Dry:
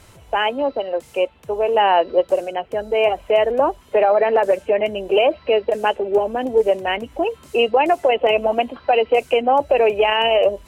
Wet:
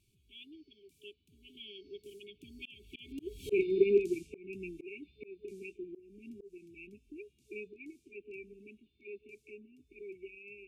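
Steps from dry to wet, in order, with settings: Doppler pass-by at 3.50 s, 38 m/s, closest 3.3 m; FFT band-reject 430–2200 Hz; slow attack 294 ms; trim +7.5 dB

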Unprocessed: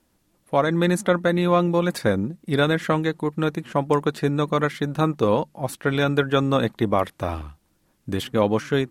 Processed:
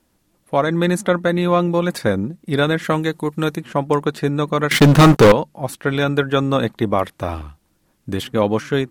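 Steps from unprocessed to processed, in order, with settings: 2.84–3.56 s: treble shelf 8.1 kHz -> 4.2 kHz +10 dB; 4.71–5.32 s: waveshaping leveller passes 5; trim +2.5 dB

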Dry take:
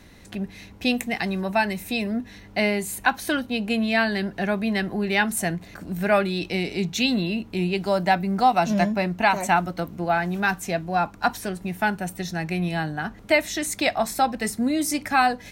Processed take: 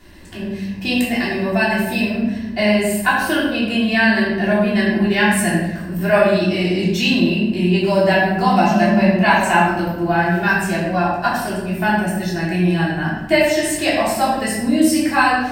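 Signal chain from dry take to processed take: rippled EQ curve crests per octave 1.3, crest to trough 7 dB; simulated room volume 480 m³, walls mixed, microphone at 3.3 m; trim -2.5 dB

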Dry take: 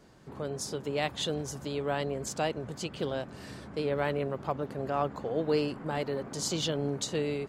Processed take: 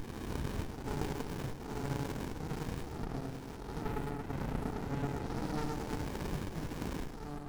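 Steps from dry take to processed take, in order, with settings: reverse spectral sustain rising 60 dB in 1.82 s; elliptic band-stop 910–5000 Hz; differentiator; compression 5:1, threshold -42 dBFS, peak gain reduction 12 dB; reverberation RT60 0.25 s, pre-delay 60 ms, DRR 5 dB; reverb removal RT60 0.86 s; filtered feedback delay 105 ms, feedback 60%, low-pass 3.7 kHz, level -3 dB; sliding maximum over 65 samples; trim +12 dB

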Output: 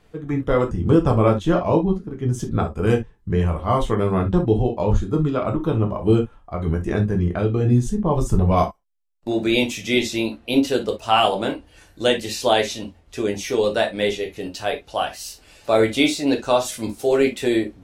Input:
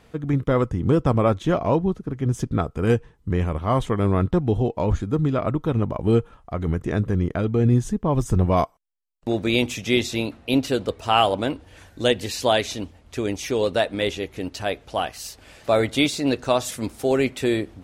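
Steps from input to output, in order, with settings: spectral noise reduction 6 dB; reverberation, pre-delay 6 ms, DRR 2 dB

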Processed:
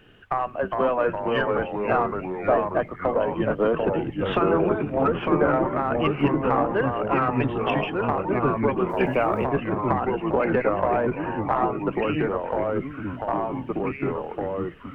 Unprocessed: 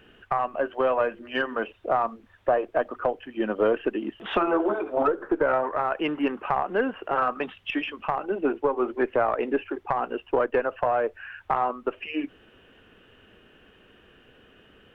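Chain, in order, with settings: octave divider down 1 oct, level -1 dB; ever faster or slower copies 370 ms, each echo -2 st, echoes 3; 8.89–9.45 s: small samples zeroed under -48 dBFS

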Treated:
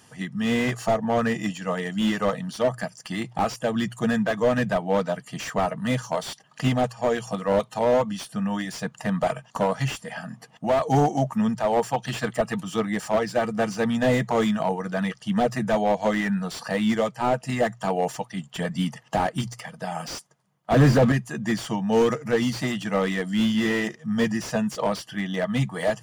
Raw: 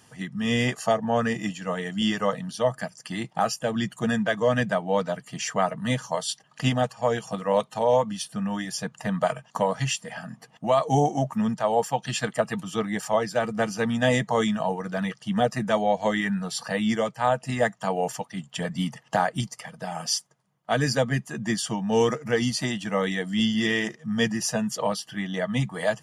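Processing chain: hum notches 60/120 Hz; 20.72–21.12 s: waveshaping leveller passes 3; slew-rate limiter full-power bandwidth 80 Hz; trim +2 dB

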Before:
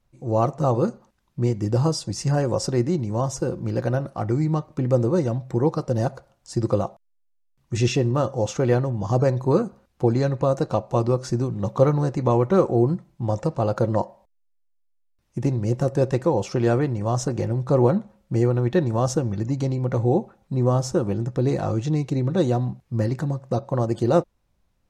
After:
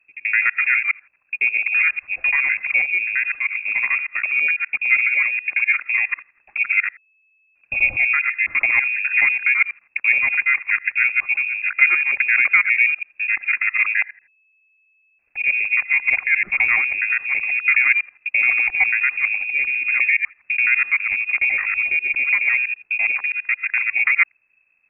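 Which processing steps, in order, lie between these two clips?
time reversed locally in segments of 83 ms; frequency inversion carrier 2.6 kHz; trim +2.5 dB

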